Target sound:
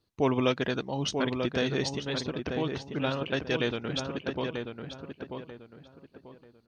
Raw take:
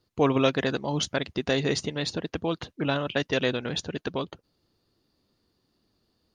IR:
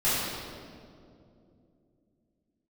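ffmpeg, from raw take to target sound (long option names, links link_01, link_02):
-filter_complex "[0:a]asplit=2[link_01][link_02];[link_02]adelay=892,lowpass=frequency=2200:poles=1,volume=-5.5dB,asplit=2[link_03][link_04];[link_04]adelay=892,lowpass=frequency=2200:poles=1,volume=0.31,asplit=2[link_05][link_06];[link_06]adelay=892,lowpass=frequency=2200:poles=1,volume=0.31,asplit=2[link_07][link_08];[link_08]adelay=892,lowpass=frequency=2200:poles=1,volume=0.31[link_09];[link_01][link_03][link_05][link_07][link_09]amix=inputs=5:normalize=0,asetrate=41895,aresample=44100,volume=-3.5dB"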